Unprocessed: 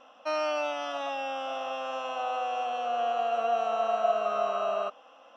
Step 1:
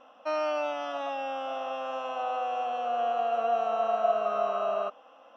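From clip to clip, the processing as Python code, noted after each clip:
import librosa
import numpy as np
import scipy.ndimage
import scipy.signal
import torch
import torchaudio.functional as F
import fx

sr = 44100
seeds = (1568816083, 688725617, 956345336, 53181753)

y = fx.high_shelf(x, sr, hz=2600.0, db=-8.5)
y = F.gain(torch.from_numpy(y), 1.0).numpy()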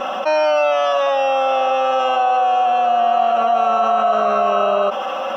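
y = x + 0.86 * np.pad(x, (int(5.3 * sr / 1000.0), 0))[:len(x)]
y = fx.env_flatten(y, sr, amount_pct=70)
y = F.gain(torch.from_numpy(y), 8.0).numpy()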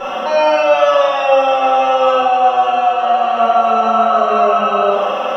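y = fx.room_shoebox(x, sr, seeds[0], volume_m3=1500.0, walls='mixed', distance_m=4.3)
y = F.gain(torch.from_numpy(y), -3.5).numpy()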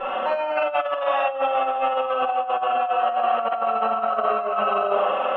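y = scipy.signal.sosfilt(scipy.signal.butter(4, 2900.0, 'lowpass', fs=sr, output='sos'), x)
y = fx.peak_eq(y, sr, hz=190.0, db=-7.0, octaves=1.4)
y = fx.over_compress(y, sr, threshold_db=-15.0, ratio=-0.5)
y = F.gain(torch.from_numpy(y), -6.5).numpy()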